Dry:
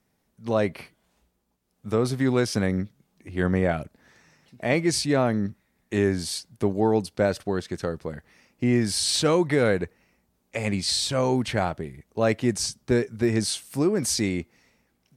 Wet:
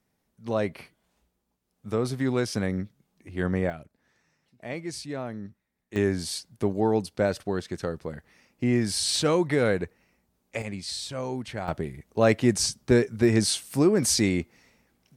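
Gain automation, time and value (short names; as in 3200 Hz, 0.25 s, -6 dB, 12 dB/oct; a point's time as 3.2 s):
-3.5 dB
from 3.7 s -12 dB
from 5.96 s -2 dB
from 10.62 s -9 dB
from 11.68 s +2 dB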